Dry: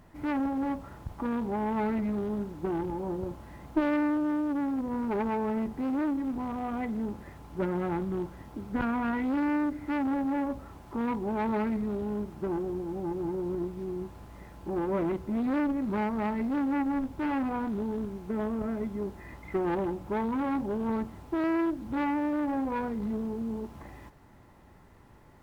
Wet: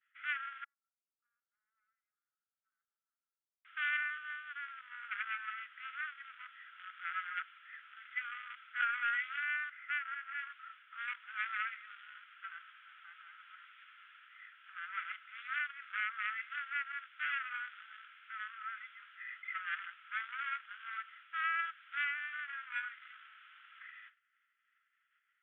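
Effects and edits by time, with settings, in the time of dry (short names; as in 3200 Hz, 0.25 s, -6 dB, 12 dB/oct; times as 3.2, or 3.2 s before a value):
0.64–3.65 Butterworth band-pass 200 Hz, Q 2
6.47–8.55 reverse
9.7–10.39 BPF 540–2900 Hz
whole clip: expander -44 dBFS; Chebyshev band-pass 1300–3400 Hz, order 5; gain +6.5 dB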